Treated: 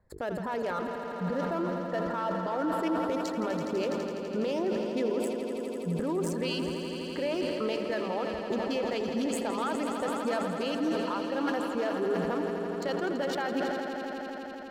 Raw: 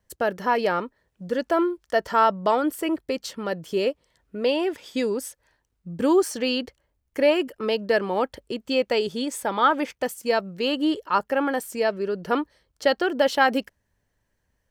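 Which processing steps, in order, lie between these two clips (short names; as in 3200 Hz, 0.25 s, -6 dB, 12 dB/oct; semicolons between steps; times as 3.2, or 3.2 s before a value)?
Wiener smoothing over 15 samples; notches 50/100/150/200/250/300/350/400/450 Hz; reverb removal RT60 1.5 s; compressor, threshold -31 dBFS, peak gain reduction 15.5 dB; limiter -29.5 dBFS, peak gain reduction 10 dB; on a send: swelling echo 83 ms, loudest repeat 5, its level -11 dB; on the sum: sustainer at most 24 dB/s; gain +5 dB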